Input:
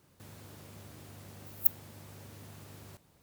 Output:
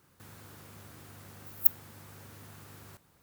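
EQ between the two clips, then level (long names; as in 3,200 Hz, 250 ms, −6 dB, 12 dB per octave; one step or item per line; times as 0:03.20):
parametric band 1,400 Hz +6 dB 1.1 octaves
high-shelf EQ 9,200 Hz +5 dB
notch filter 610 Hz, Q 14
−1.5 dB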